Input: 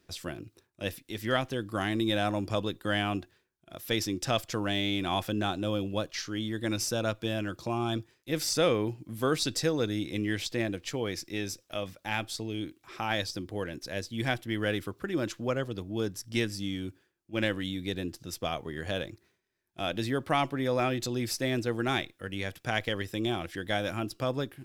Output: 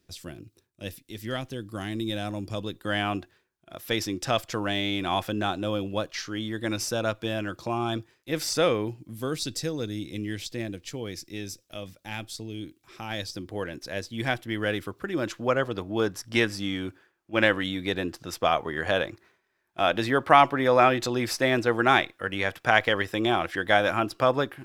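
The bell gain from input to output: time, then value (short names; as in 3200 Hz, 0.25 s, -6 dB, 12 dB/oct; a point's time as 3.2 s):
bell 1100 Hz 2.8 oct
2.51 s -6.5 dB
3.05 s +4.5 dB
8.63 s +4.5 dB
9.27 s -6 dB
13.09 s -6 dB
13.56 s +4 dB
15.14 s +4 dB
15.74 s +13 dB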